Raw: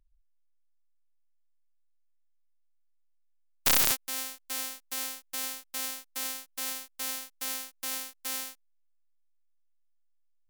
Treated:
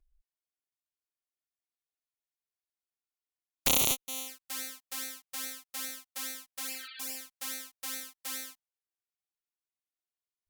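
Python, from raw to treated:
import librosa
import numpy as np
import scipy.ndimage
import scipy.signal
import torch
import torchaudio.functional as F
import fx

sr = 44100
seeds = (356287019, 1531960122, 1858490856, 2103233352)

y = fx.spec_repair(x, sr, seeds[0], start_s=6.66, length_s=0.48, low_hz=1300.0, high_hz=4700.0, source='both')
y = fx.cheby_harmonics(y, sr, harmonics=(7, 8), levels_db=(-29, -37), full_scale_db=-1.5)
y = fx.env_flanger(y, sr, rest_ms=2.8, full_db=-32.5)
y = y * librosa.db_to_amplitude(2.0)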